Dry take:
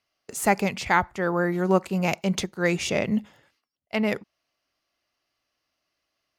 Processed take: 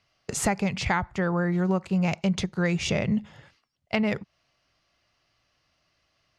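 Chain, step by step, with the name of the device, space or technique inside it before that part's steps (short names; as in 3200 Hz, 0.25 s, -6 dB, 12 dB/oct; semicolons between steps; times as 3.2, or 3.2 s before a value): jukebox (LPF 6600 Hz 12 dB/oct; resonant low shelf 200 Hz +7 dB, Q 1.5; compressor 4:1, threshold -32 dBFS, peak gain reduction 16 dB); gain +8 dB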